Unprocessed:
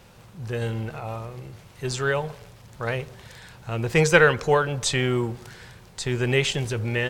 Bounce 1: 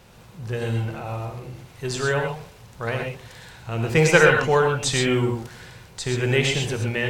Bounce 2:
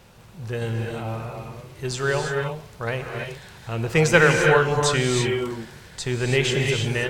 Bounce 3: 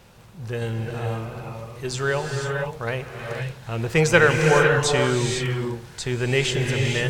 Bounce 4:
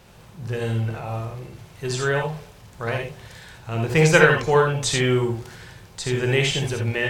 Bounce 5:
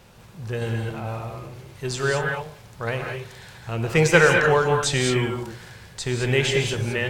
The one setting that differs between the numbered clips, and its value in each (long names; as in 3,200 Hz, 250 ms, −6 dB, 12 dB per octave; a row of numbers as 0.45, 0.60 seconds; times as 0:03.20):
reverb whose tail is shaped and stops, gate: 150, 360, 530, 100, 240 milliseconds